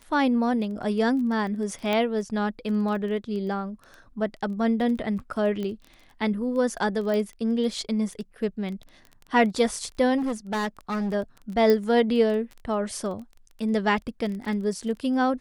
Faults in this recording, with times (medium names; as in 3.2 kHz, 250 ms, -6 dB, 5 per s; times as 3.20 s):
crackle 14 per s -33 dBFS
1.93 s: pop -13 dBFS
5.63 s: pop -21 dBFS
7.14 s: pop -18 dBFS
10.17–11.15 s: clipped -24 dBFS
11.70 s: pop -11 dBFS